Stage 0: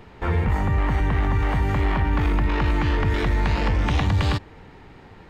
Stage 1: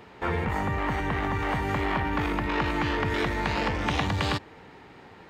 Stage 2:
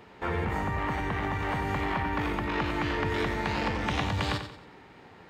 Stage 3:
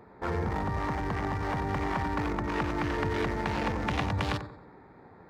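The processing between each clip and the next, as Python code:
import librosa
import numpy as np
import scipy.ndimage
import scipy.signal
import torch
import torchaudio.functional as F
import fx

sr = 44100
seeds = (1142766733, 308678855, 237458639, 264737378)

y1 = fx.highpass(x, sr, hz=250.0, slope=6)
y2 = fx.echo_feedback(y1, sr, ms=91, feedback_pct=38, wet_db=-9)
y2 = y2 * librosa.db_to_amplitude(-3.0)
y3 = fx.wiener(y2, sr, points=15)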